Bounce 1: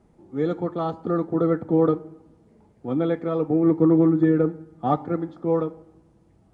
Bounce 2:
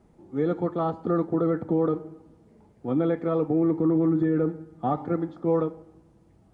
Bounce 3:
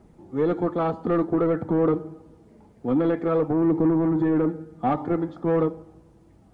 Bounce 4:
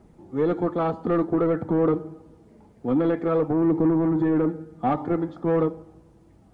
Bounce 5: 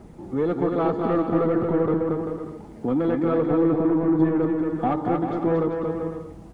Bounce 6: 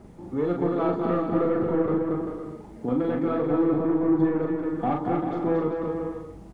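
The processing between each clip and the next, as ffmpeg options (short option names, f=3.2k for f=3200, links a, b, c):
-filter_complex "[0:a]alimiter=limit=-15.5dB:level=0:latency=1:release=37,acrossover=split=2600[a][b];[b]acompressor=threshold=-59dB:ratio=4:attack=1:release=60[c];[a][c]amix=inputs=2:normalize=0"
-af "asoftclip=type=tanh:threshold=-19dB,aphaser=in_gain=1:out_gain=1:delay=4.6:decay=0.22:speed=0.53:type=triangular,volume=4dB"
-af anull
-filter_complex "[0:a]acompressor=threshold=-37dB:ratio=2,asplit=2[a][b];[b]aecho=0:1:230|391|503.7|582.6|637.8:0.631|0.398|0.251|0.158|0.1[c];[a][c]amix=inputs=2:normalize=0,volume=8.5dB"
-filter_complex "[0:a]asplit=2[a][b];[b]adelay=40,volume=-4dB[c];[a][c]amix=inputs=2:normalize=0,volume=-3.5dB"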